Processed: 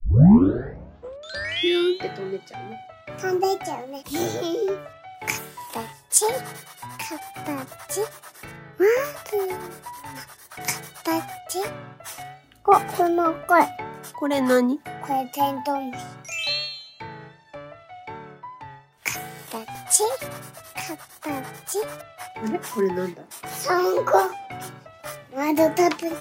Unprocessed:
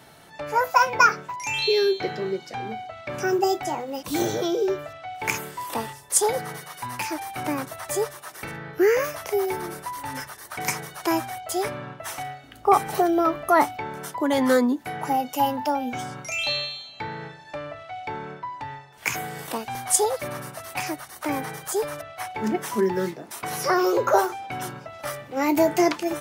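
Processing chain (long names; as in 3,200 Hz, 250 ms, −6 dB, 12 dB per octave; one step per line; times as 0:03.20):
turntable start at the beginning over 2.06 s
pitch vibrato 2.6 Hz 33 cents
multiband upward and downward expander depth 40%
level −1 dB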